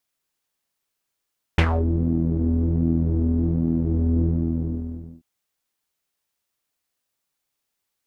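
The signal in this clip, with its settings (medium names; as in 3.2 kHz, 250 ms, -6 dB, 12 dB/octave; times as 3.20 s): synth patch with pulse-width modulation E2, noise -1.5 dB, filter lowpass, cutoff 260 Hz, filter envelope 3.5 oct, filter decay 0.26 s, filter sustain 5%, attack 2.8 ms, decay 0.07 s, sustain -7 dB, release 0.93 s, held 2.71 s, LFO 1.3 Hz, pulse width 33%, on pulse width 17%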